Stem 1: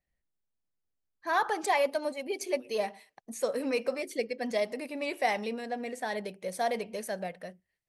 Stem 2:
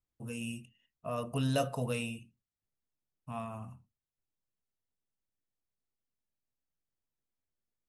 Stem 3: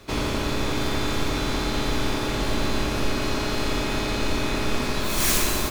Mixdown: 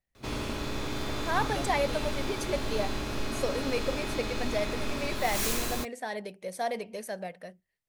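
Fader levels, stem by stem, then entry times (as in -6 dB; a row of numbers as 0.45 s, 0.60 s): -1.5 dB, -8.0 dB, -8.5 dB; 0.00 s, 0.00 s, 0.15 s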